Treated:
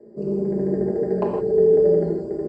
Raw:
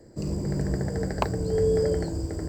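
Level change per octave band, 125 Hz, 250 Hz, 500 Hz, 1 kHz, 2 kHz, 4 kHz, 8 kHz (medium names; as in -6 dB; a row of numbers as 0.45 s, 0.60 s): -3.0 dB, +5.5 dB, +9.0 dB, 0.0 dB, no reading, under -15 dB, under -20 dB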